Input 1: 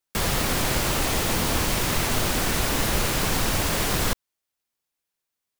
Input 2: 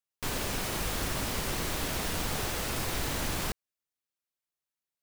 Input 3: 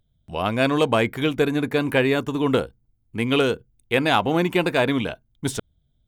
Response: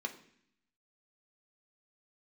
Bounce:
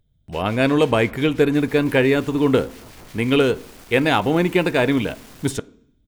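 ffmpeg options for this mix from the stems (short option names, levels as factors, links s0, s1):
-filter_complex "[0:a]aeval=exprs='clip(val(0),-1,0.0335)':c=same,adelay=1400,volume=0.178[s0];[1:a]lowpass=f=2300:p=1,acrossover=split=1600[s1][s2];[s1]aeval=exprs='val(0)*(1-1/2+1/2*cos(2*PI*5.8*n/s))':c=same[s3];[s2]aeval=exprs='val(0)*(1-1/2-1/2*cos(2*PI*5.8*n/s))':c=same[s4];[s3][s4]amix=inputs=2:normalize=0,adelay=100,volume=0.841[s5];[2:a]volume=1.26,asplit=2[s6][s7];[s7]volume=0.266[s8];[s0][s5]amix=inputs=2:normalize=0,alimiter=level_in=2.99:limit=0.0631:level=0:latency=1:release=22,volume=0.335,volume=1[s9];[3:a]atrim=start_sample=2205[s10];[s8][s10]afir=irnorm=-1:irlink=0[s11];[s6][s9][s11]amix=inputs=3:normalize=0"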